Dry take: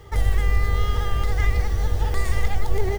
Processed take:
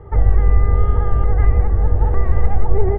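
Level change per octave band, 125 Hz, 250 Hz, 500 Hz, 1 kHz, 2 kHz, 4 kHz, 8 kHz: +7.0 dB, +7.0 dB, +6.5 dB, +4.0 dB, -5.5 dB, under -20 dB, no reading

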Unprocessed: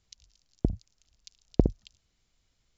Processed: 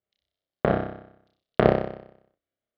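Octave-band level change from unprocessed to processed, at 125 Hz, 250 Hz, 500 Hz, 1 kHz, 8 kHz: +1.0 dB, +2.5 dB, +12.0 dB, +20.0 dB, no reading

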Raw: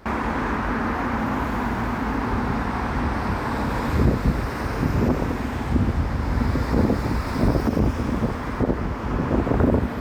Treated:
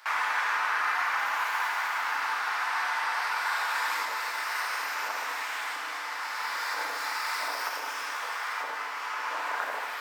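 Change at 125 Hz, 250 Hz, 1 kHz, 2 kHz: under -40 dB, -36.5 dB, -1.5 dB, +3.5 dB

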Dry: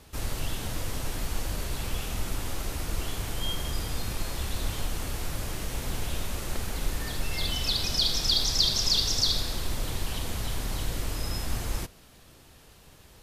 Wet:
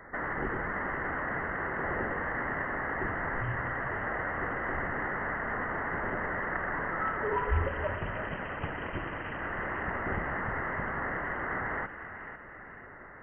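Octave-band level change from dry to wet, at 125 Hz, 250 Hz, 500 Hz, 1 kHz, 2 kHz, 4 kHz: -4.5 dB, +0.5 dB, +5.0 dB, +8.0 dB, +9.5 dB, -29.0 dB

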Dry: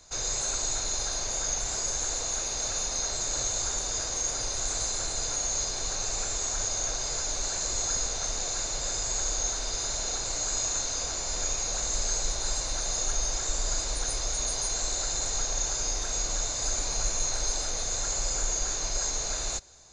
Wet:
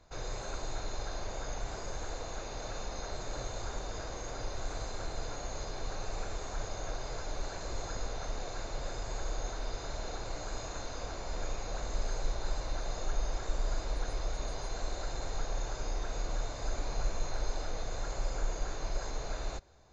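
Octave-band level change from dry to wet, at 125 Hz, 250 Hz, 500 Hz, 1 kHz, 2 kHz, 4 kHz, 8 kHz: 0.0 dB, -1.0 dB, -1.5 dB, -3.0 dB, -6.0 dB, -13.5 dB, -21.0 dB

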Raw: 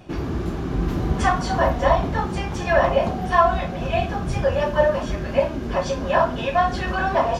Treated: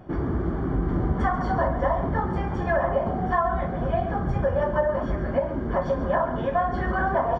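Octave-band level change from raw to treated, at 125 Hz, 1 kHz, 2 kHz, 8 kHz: -1.5 dB, -4.0 dB, -5.5 dB, under -20 dB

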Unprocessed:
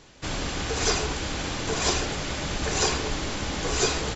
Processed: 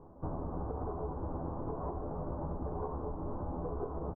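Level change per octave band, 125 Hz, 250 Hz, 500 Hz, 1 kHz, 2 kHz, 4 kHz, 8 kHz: -7.0 dB, -8.0 dB, -9.0 dB, -10.0 dB, -34.0 dB, under -40 dB, no reading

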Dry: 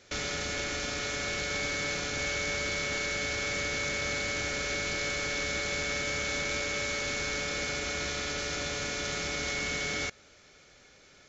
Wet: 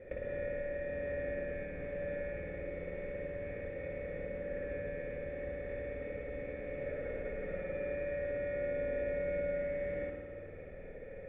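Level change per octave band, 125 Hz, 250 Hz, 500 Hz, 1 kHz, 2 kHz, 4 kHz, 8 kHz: -5.5 dB, -6.0 dB, +1.5 dB, -17.0 dB, -15.0 dB, under -35 dB, no reading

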